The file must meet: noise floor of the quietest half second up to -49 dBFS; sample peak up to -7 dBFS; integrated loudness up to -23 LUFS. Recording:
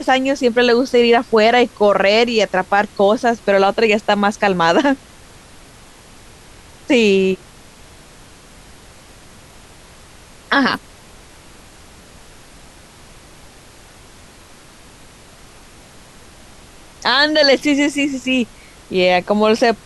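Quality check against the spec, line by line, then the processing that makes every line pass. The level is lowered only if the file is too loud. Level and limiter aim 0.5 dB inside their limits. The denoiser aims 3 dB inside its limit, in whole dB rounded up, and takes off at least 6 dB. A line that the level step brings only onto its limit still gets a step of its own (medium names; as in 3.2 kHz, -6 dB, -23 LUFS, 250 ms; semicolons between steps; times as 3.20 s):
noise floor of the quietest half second -43 dBFS: fail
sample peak -3.5 dBFS: fail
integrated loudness -15.0 LUFS: fail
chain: trim -8.5 dB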